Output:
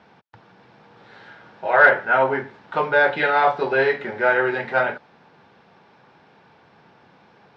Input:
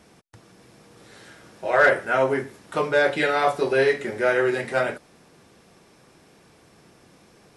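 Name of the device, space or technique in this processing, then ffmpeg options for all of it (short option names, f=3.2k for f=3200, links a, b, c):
guitar cabinet: -af "highpass=100,equalizer=f=320:t=q:w=4:g=-5,equalizer=f=870:t=q:w=4:g=10,equalizer=f=1.5k:t=q:w=4:g=6,lowpass=f=4.1k:w=0.5412,lowpass=f=4.1k:w=1.3066"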